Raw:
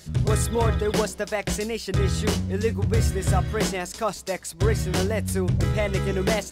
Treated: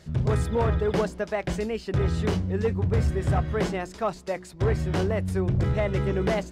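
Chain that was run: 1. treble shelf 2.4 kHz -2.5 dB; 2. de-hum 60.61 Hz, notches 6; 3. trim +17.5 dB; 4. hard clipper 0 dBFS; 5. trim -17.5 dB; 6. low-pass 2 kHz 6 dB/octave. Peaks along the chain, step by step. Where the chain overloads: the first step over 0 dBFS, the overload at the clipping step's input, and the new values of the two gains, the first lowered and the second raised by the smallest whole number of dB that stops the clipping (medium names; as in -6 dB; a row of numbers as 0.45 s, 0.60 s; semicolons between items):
-9.5 dBFS, -9.5 dBFS, +8.0 dBFS, 0.0 dBFS, -17.5 dBFS, -17.5 dBFS; step 3, 8.0 dB; step 3 +9.5 dB, step 5 -9.5 dB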